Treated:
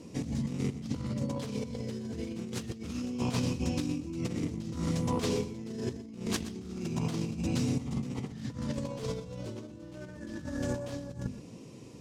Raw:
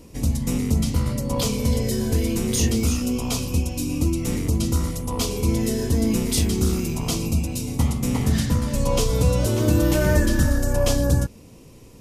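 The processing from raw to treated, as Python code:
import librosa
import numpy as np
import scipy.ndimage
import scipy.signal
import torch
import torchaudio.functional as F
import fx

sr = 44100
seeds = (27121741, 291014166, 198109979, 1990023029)

y = fx.tracing_dist(x, sr, depth_ms=0.34)
y = scipy.signal.sosfilt(scipy.signal.cheby1(2, 1.0, [170.0, 6800.0], 'bandpass', fs=sr, output='sos'), y)
y = fx.low_shelf(y, sr, hz=250.0, db=8.0)
y = fx.hum_notches(y, sr, base_hz=50, count=5)
y = fx.over_compress(y, sr, threshold_db=-26.0, ratio=-0.5)
y = y + 10.0 ** (-14.5 / 20.0) * np.pad(y, (int(122 * sr / 1000.0), 0))[:len(y)]
y = y * 10.0 ** (-8.0 / 20.0)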